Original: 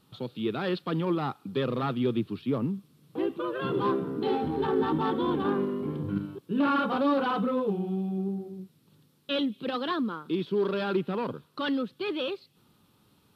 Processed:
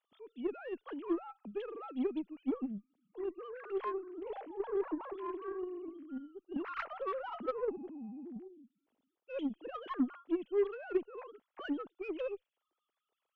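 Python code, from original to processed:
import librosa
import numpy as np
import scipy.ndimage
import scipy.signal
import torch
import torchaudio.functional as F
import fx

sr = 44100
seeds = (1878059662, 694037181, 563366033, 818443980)

y = fx.sine_speech(x, sr)
y = fx.cheby_harmonics(y, sr, harmonics=(6, 7), levels_db=(-31, -28), full_scale_db=-12.0)
y = y * librosa.db_to_amplitude(-9.0)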